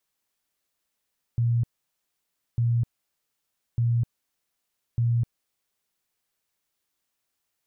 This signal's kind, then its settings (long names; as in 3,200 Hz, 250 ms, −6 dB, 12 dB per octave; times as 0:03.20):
tone bursts 118 Hz, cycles 30, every 1.20 s, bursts 4, −19.5 dBFS